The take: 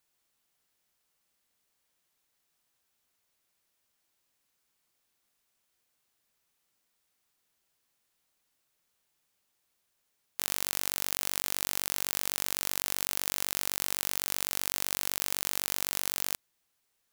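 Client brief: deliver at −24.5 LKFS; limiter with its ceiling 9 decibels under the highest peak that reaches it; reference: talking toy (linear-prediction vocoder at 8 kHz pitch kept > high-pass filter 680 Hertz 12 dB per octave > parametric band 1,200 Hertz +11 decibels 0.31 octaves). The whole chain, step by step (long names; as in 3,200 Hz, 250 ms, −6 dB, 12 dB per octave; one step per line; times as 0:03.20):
brickwall limiter −12.5 dBFS
linear-prediction vocoder at 8 kHz pitch kept
high-pass filter 680 Hz 12 dB per octave
parametric band 1,200 Hz +11 dB 0.31 octaves
level +23.5 dB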